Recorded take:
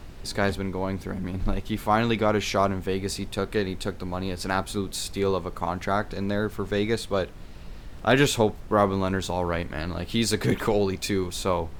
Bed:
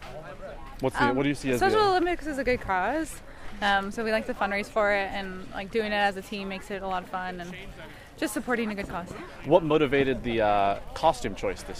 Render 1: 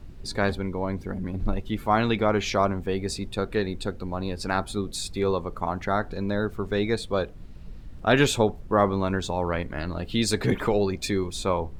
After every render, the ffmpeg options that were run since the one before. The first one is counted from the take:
-af "afftdn=nr=10:nf=-41"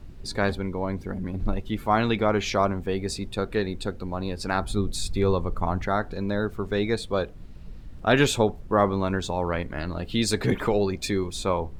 -filter_complex "[0:a]asettb=1/sr,asplit=3[s0][s1][s2];[s0]atrim=end=4.624[s3];[s1]atrim=start=4.62:end=5.87,asetpts=PTS-STARTPTS,afade=t=in:d=0.004:c=qsin,afade=t=out:st=1.246:d=0.004:c=qsin,lowshelf=f=130:g=11[s4];[s2]atrim=start=5.866[s5];[s3][s4]acrossfade=d=0.004:c1=hsin:c2=qsin[s6];[s6][s5]acrossfade=d=0.004:c1=qsin:c2=hsin"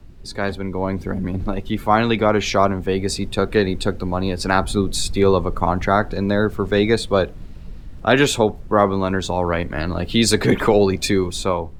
-filter_complex "[0:a]acrossover=split=180|680|2300[s0][s1][s2][s3];[s0]alimiter=level_in=1.58:limit=0.0631:level=0:latency=1,volume=0.631[s4];[s4][s1][s2][s3]amix=inputs=4:normalize=0,dynaudnorm=f=210:g=7:m=3.35"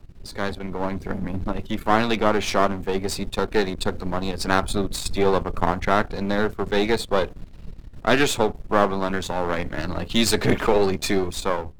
-af "aeval=exprs='if(lt(val(0),0),0.251*val(0),val(0))':c=same"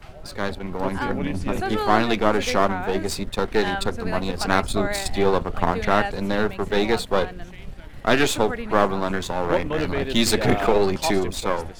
-filter_complex "[1:a]volume=0.631[s0];[0:a][s0]amix=inputs=2:normalize=0"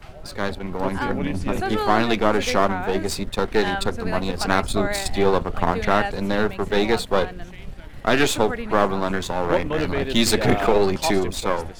-af "volume=1.12,alimiter=limit=0.708:level=0:latency=1"

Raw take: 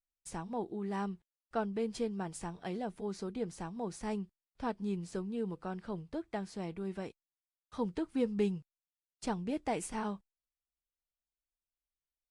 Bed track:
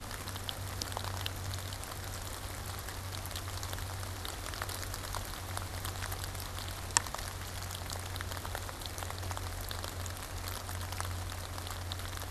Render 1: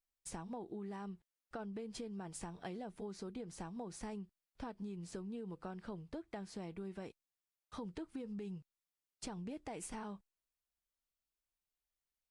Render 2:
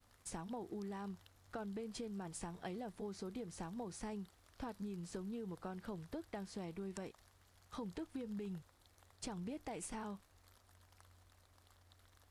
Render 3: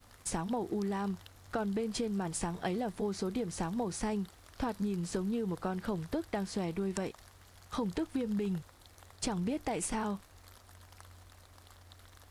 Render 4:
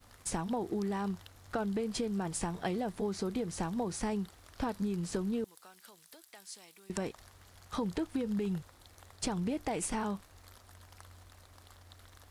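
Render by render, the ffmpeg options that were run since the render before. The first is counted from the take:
-af "alimiter=level_in=2:limit=0.0631:level=0:latency=1:release=68,volume=0.501,acompressor=threshold=0.00794:ratio=6"
-filter_complex "[1:a]volume=0.0422[s0];[0:a][s0]amix=inputs=2:normalize=0"
-af "volume=3.55"
-filter_complex "[0:a]asettb=1/sr,asplit=3[s0][s1][s2];[s0]atrim=end=5.444[s3];[s1]atrim=start=5.44:end=6.9,asetpts=PTS-STARTPTS,afade=t=in:d=0.004:c=qsin,afade=t=out:st=1.456:d=0.004:c=qsin,aderivative[s4];[s2]atrim=start=6.896[s5];[s3][s4]acrossfade=d=0.004:c1=hsin:c2=qsin[s6];[s6][s5]acrossfade=d=0.004:c1=qsin:c2=hsin"

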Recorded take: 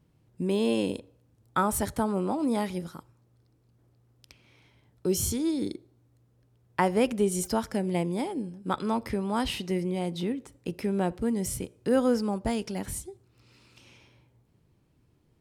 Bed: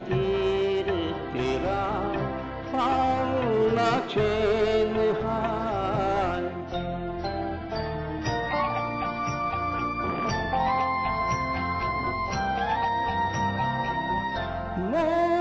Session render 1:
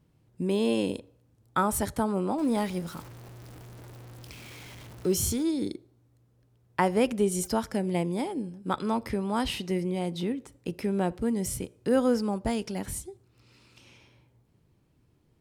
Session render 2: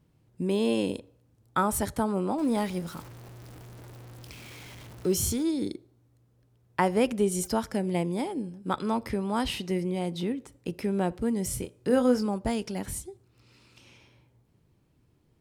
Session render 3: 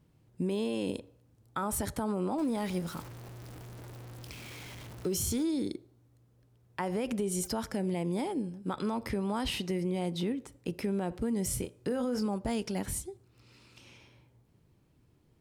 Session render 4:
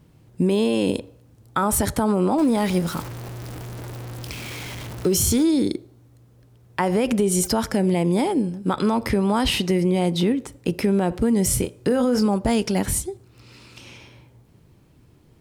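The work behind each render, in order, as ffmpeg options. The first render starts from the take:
-filter_complex "[0:a]asettb=1/sr,asplit=3[s0][s1][s2];[s0]atrim=end=2.384[s3];[s1]atrim=start=2.38:end=5.43,asetpts=PTS-STARTPTS,afade=t=in:d=0.004:c=qsin,afade=t=out:st=3.046:d=0.004:c=qsin,aeval=exprs='val(0)+0.5*0.00891*sgn(val(0))':c=same[s4];[s2]atrim=start=5.426[s5];[s3][s4]acrossfade=d=0.004:c1=hsin:c2=qsin[s6];[s6][s5]acrossfade=d=0.004:c1=qsin:c2=hsin"
-filter_complex "[0:a]asettb=1/sr,asplit=3[s0][s1][s2];[s0]atrim=end=11.484[s3];[s1]atrim=start=11.48:end=12.26,asetpts=PTS-STARTPTS,afade=t=in:d=0.004:c=qsin,afade=t=out:st=0.776:d=0.004:c=qsin,asplit=2[s4][s5];[s5]adelay=24,volume=0.376[s6];[s4][s6]amix=inputs=2:normalize=0,atrim=end_sample=34398[s7];[s2]atrim=start=12.256[s8];[s3][s7]acrossfade=d=0.004:c1=hsin:c2=qsin[s9];[s9][s8]acrossfade=d=0.004:c1=qsin:c2=hsin"
-af "alimiter=limit=0.0794:level=0:latency=1:release=52,acompressor=threshold=0.0447:ratio=6"
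-af "volume=3.98"

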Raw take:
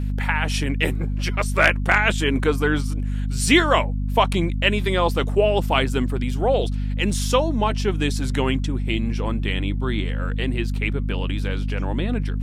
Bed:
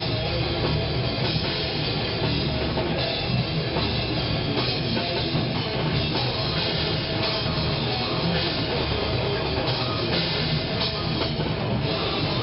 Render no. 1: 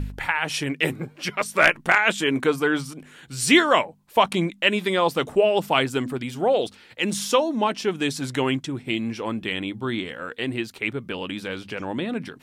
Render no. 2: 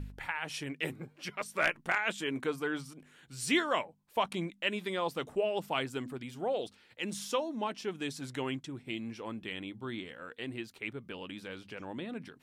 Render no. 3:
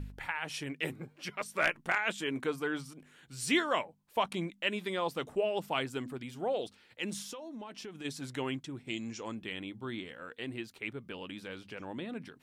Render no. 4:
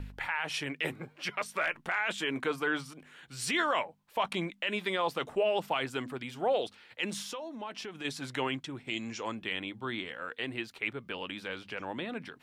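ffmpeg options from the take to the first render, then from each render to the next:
-af "bandreject=f=50:t=h:w=4,bandreject=f=100:t=h:w=4,bandreject=f=150:t=h:w=4,bandreject=f=200:t=h:w=4,bandreject=f=250:t=h:w=4"
-af "volume=0.237"
-filter_complex "[0:a]asplit=3[s0][s1][s2];[s0]afade=t=out:st=7.21:d=0.02[s3];[s1]acompressor=threshold=0.01:ratio=12:attack=3.2:release=140:knee=1:detection=peak,afade=t=in:st=7.21:d=0.02,afade=t=out:st=8.04:d=0.02[s4];[s2]afade=t=in:st=8.04:d=0.02[s5];[s3][s4][s5]amix=inputs=3:normalize=0,asettb=1/sr,asplit=3[s6][s7][s8];[s6]atrim=end=8.874[s9];[s7]atrim=start=8.87:end=9.35,asetpts=PTS-STARTPTS,afade=t=in:d=0.004:c=qsin,afade=t=out:st=0.476:d=0.004:c=qsin,lowpass=f=6800:t=q:w=11[s10];[s8]atrim=start=9.346[s11];[s9][s10]acrossfade=d=0.004:c1=hsin:c2=qsin[s12];[s12][s11]acrossfade=d=0.004:c1=qsin:c2=hsin"
-filter_complex "[0:a]acrossover=split=540|4400[s0][s1][s2];[s1]acontrast=89[s3];[s0][s3][s2]amix=inputs=3:normalize=0,alimiter=limit=0.1:level=0:latency=1:release=15"

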